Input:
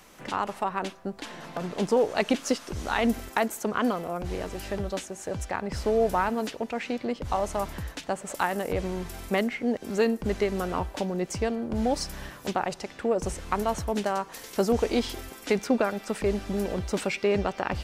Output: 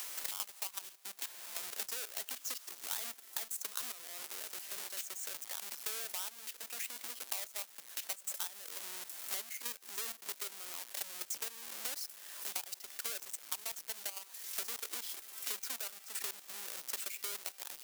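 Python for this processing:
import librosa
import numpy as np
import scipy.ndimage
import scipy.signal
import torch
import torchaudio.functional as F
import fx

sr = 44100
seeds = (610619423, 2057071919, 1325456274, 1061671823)

y = fx.halfwave_hold(x, sr)
y = scipy.signal.sosfilt(scipy.signal.butter(2, 270.0, 'highpass', fs=sr, output='sos'), y)
y = fx.level_steps(y, sr, step_db=12)
y = np.diff(y, prepend=0.0)
y = fx.band_squash(y, sr, depth_pct=100)
y = y * librosa.db_to_amplitude(-5.0)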